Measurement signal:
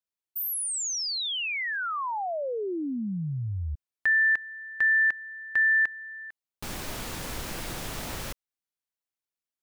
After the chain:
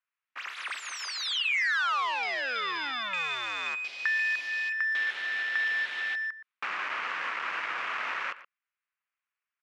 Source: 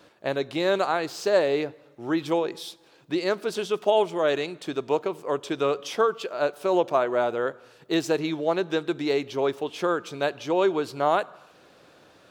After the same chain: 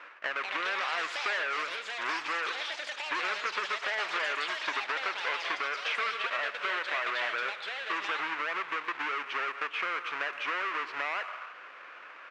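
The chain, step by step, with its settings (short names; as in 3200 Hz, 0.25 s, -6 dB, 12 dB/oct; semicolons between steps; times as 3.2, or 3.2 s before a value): half-waves squared off; band shelf 1700 Hz +13.5 dB; limiter -10.5 dBFS; compressor 4:1, threshold -25 dBFS; air absorption 150 m; echoes that change speed 0.266 s, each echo +6 st, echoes 3, each echo -6 dB; BPF 670–7200 Hz; speakerphone echo 0.12 s, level -15 dB; gain -2.5 dB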